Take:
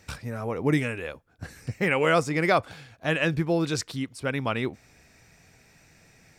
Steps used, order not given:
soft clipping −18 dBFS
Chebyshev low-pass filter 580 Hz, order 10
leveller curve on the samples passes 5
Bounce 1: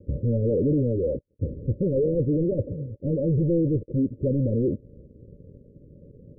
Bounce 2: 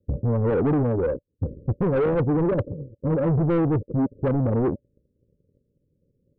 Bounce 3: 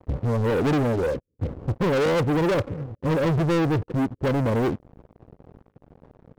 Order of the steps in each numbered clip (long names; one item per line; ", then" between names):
soft clipping, then leveller curve on the samples, then Chebyshev low-pass filter
leveller curve on the samples, then Chebyshev low-pass filter, then soft clipping
Chebyshev low-pass filter, then soft clipping, then leveller curve on the samples